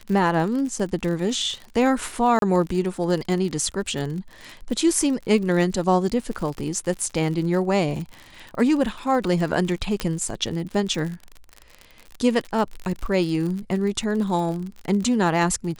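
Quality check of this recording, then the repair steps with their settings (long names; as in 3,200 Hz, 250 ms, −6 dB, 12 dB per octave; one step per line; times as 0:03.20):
surface crackle 54 per second −29 dBFS
0:02.39–0:02.42: drop-out 32 ms
0:10.00: click −11 dBFS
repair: click removal
repair the gap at 0:02.39, 32 ms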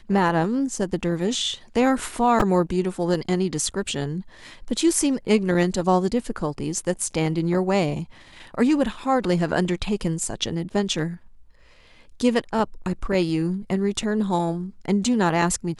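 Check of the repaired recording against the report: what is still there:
none of them is left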